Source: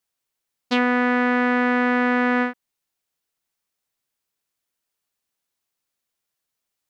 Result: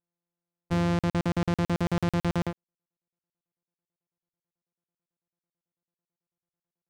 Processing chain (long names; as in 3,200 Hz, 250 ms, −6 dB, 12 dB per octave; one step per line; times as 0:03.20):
samples sorted by size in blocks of 256 samples
low-pass filter 1,000 Hz 6 dB per octave
leveller curve on the samples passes 2
in parallel at −10.5 dB: hard clipping −22 dBFS, distortion −10 dB
on the sum: regular buffer underruns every 0.11 s, samples 2,048, zero, from 0:00.99
level −9 dB